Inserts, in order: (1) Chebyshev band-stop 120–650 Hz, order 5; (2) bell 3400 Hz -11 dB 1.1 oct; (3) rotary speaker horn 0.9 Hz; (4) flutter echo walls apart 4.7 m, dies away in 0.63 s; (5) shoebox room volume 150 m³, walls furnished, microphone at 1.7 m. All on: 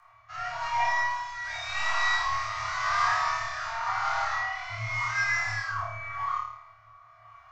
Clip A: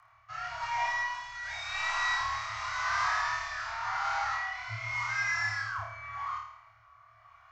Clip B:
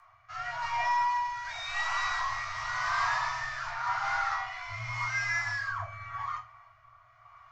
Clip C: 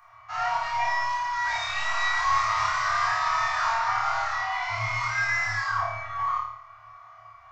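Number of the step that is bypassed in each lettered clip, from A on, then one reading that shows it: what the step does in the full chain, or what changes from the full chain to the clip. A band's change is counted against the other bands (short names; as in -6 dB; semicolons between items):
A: 5, echo-to-direct 6.0 dB to 1.0 dB; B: 4, echo-to-direct 6.0 dB to 1.0 dB; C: 3, 1 kHz band +2.0 dB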